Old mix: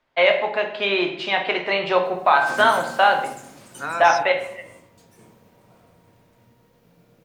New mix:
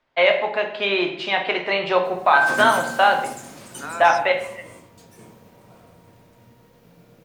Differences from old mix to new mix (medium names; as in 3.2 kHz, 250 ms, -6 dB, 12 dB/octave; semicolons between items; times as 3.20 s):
second voice -4.5 dB; background +5.0 dB